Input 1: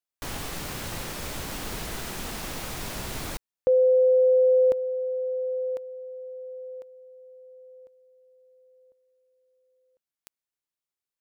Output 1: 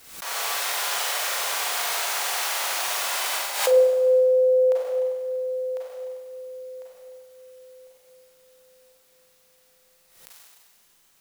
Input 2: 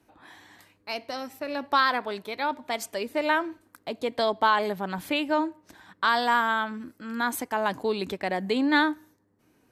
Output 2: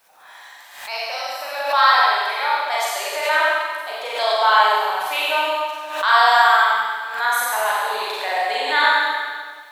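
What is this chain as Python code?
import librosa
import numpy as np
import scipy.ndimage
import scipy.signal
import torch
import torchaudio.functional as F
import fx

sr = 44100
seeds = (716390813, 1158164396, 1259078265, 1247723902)

y = scipy.signal.sosfilt(scipy.signal.butter(4, 640.0, 'highpass', fs=sr, output='sos'), x)
y = fx.quant_dither(y, sr, seeds[0], bits=12, dither='triangular')
y = fx.echo_feedback(y, sr, ms=92, feedback_pct=47, wet_db=-8.5)
y = fx.rev_schroeder(y, sr, rt60_s=1.6, comb_ms=33, drr_db=-6.5)
y = fx.pre_swell(y, sr, db_per_s=78.0)
y = y * librosa.db_to_amplitude(2.5)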